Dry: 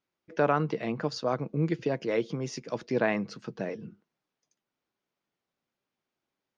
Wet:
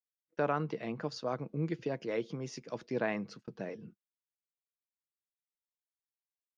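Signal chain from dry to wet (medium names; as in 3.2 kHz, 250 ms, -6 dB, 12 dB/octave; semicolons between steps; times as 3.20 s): gate -44 dBFS, range -39 dB; trim -6.5 dB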